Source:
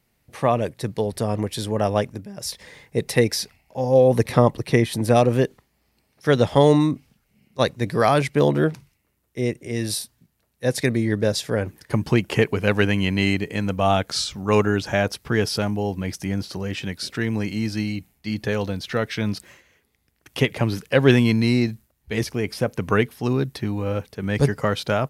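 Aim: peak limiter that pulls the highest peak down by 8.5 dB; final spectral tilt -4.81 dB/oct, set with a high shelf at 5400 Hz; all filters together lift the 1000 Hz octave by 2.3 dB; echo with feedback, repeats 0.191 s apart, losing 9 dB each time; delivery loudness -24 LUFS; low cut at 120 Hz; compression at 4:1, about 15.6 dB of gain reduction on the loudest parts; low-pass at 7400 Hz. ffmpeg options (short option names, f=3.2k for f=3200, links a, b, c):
-af "highpass=120,lowpass=7.4k,equalizer=f=1k:t=o:g=3.5,highshelf=f=5.4k:g=-8,acompressor=threshold=-29dB:ratio=4,alimiter=limit=-21dB:level=0:latency=1,aecho=1:1:191|382|573|764:0.355|0.124|0.0435|0.0152,volume=10dB"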